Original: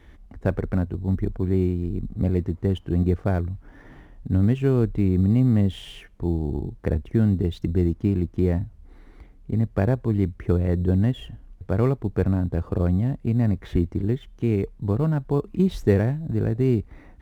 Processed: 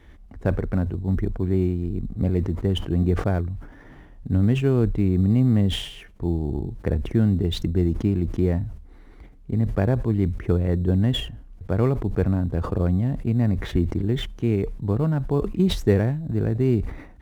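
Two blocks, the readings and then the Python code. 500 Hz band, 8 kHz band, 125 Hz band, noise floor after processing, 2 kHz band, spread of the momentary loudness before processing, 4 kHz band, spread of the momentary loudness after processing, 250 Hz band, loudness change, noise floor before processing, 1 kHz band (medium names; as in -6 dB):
0.0 dB, no reading, +0.5 dB, -46 dBFS, +1.5 dB, 8 LU, +10.5 dB, 8 LU, +0.5 dB, +0.5 dB, -49 dBFS, +1.0 dB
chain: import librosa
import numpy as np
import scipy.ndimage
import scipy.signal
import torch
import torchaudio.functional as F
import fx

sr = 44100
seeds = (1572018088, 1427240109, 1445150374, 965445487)

y = fx.sustainer(x, sr, db_per_s=81.0)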